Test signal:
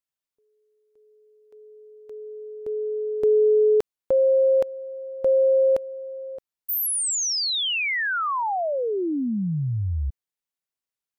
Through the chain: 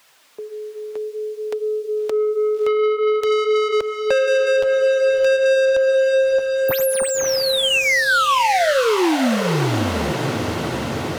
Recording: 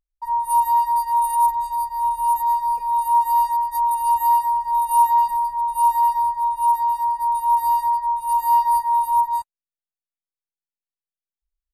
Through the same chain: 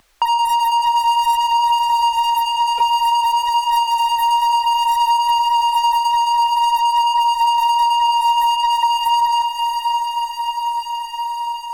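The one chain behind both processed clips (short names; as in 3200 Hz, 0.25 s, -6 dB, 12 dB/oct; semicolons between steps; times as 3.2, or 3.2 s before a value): overdrive pedal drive 29 dB, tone 2900 Hz, clips at -7.5 dBFS; flange 0.54 Hz, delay 1 ms, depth 9.1 ms, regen -34%; soft clip -17.5 dBFS; diffused feedback echo 0.612 s, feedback 57%, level -8 dB; three-band squash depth 70%; gain +3.5 dB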